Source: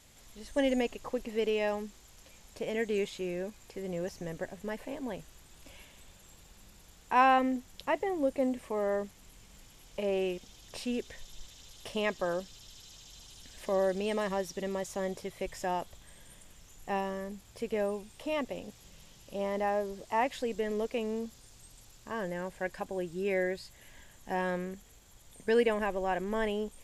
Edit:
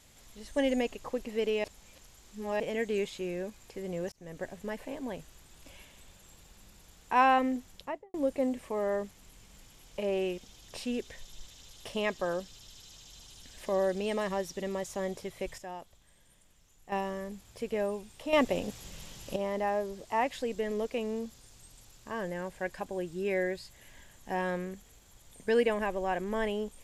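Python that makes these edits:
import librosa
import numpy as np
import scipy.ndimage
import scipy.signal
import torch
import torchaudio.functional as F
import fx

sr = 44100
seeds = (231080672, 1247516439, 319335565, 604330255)

y = fx.studio_fade_out(x, sr, start_s=7.69, length_s=0.45)
y = fx.edit(y, sr, fx.reverse_span(start_s=1.64, length_s=0.96),
    fx.fade_in_span(start_s=4.12, length_s=0.33),
    fx.clip_gain(start_s=15.58, length_s=1.34, db=-9.5),
    fx.clip_gain(start_s=18.33, length_s=1.03, db=8.5), tone=tone)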